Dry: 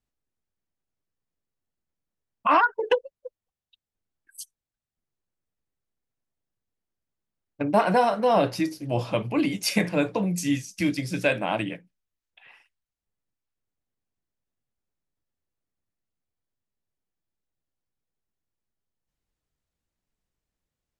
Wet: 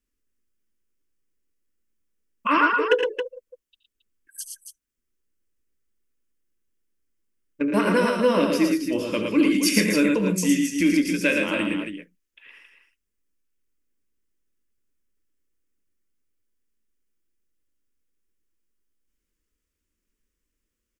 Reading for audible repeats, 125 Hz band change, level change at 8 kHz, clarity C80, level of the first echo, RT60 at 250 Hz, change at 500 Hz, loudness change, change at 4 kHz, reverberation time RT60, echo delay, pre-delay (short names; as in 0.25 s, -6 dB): 3, -1.5 dB, +6.5 dB, none, -12.5 dB, none, +2.0 dB, +3.0 dB, +4.0 dB, none, 72 ms, none